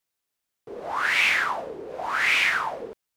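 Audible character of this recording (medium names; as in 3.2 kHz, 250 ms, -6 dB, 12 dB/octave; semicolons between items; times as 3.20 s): noise floor -83 dBFS; spectral tilt -0.5 dB/octave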